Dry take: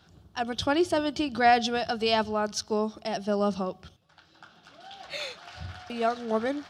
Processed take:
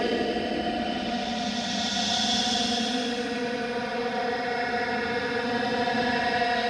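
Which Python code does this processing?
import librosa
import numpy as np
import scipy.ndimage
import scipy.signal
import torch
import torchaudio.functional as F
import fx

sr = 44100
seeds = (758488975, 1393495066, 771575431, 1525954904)

y = fx.rev_gated(x, sr, seeds[0], gate_ms=420, shape='rising', drr_db=2.0)
y = fx.paulstretch(y, sr, seeds[1], factor=32.0, window_s=0.05, from_s=1.58)
y = fx.hpss(y, sr, part='percussive', gain_db=7)
y = F.gain(torch.from_numpy(y), -3.0).numpy()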